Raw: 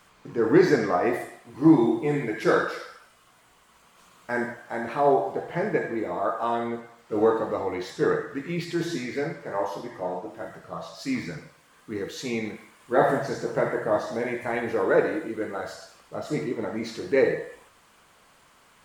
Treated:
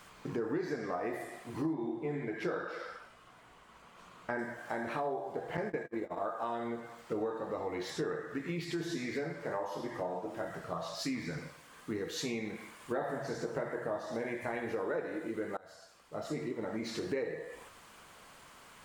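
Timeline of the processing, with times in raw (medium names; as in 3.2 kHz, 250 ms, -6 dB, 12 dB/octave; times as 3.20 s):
1.73–4.39 s: low-pass 2.4 kHz 6 dB/octave
5.57–6.26 s: gate -30 dBFS, range -34 dB
15.57–17.17 s: fade in, from -24 dB
whole clip: compression 6:1, threshold -36 dBFS; trim +2 dB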